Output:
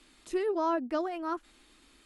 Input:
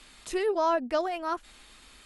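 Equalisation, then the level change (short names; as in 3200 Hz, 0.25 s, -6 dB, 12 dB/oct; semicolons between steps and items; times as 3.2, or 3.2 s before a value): bell 310 Hz +12 dB 0.7 oct; dynamic EQ 1200 Hz, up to +5 dB, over -39 dBFS, Q 1.1; -8.5 dB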